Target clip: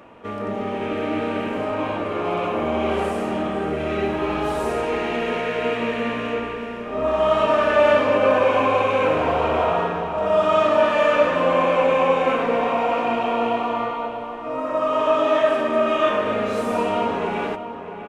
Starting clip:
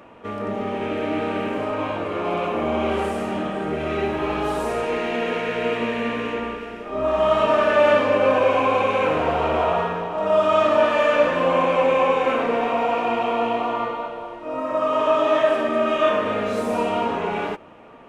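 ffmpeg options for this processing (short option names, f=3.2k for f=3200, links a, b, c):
-filter_complex "[0:a]asplit=2[a][b];[b]adelay=641.4,volume=-9dB,highshelf=f=4k:g=-14.4[c];[a][c]amix=inputs=2:normalize=0"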